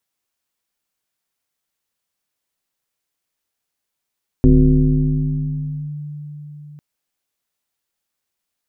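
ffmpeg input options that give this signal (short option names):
-f lavfi -i "aevalsrc='0.501*pow(10,-3*t/4.64)*sin(2*PI*148*t+1.6*clip(1-t/1.52,0,1)*sin(2*PI*0.75*148*t))':d=2.35:s=44100"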